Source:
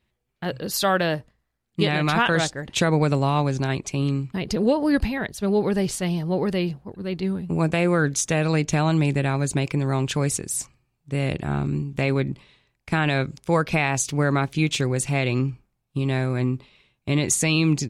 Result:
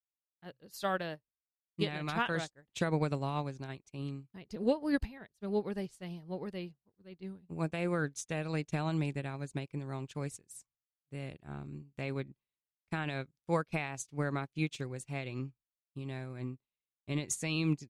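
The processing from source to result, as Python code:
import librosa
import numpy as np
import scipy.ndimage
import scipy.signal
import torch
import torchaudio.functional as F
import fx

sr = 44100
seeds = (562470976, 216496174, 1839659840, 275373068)

y = fx.upward_expand(x, sr, threshold_db=-40.0, expansion=2.5)
y = F.gain(torch.from_numpy(y), -7.5).numpy()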